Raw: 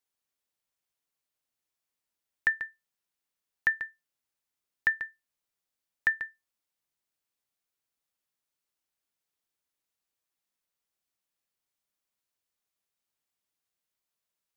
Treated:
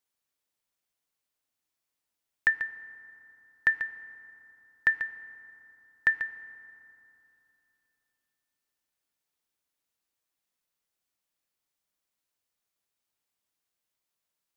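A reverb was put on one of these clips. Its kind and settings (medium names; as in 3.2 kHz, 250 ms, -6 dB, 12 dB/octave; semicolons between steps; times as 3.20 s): FDN reverb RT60 3.1 s, low-frequency decay 1.2×, high-frequency decay 0.45×, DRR 13 dB; trim +1.5 dB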